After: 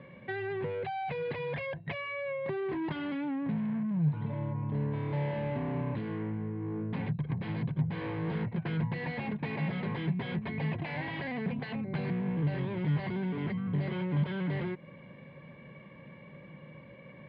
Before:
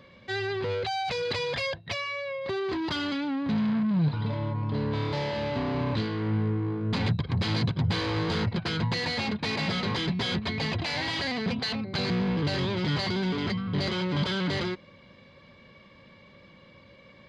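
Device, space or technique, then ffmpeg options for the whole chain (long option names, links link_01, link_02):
bass amplifier: -af "acompressor=threshold=-35dB:ratio=6,highpass=69,equalizer=frequency=90:width_type=q:width=4:gain=-9,equalizer=frequency=150:width_type=q:width=4:gain=10,equalizer=frequency=1300:width_type=q:width=4:gain=-8,lowpass=frequency=2400:width=0.5412,lowpass=frequency=2400:width=1.3066,volume=2.5dB"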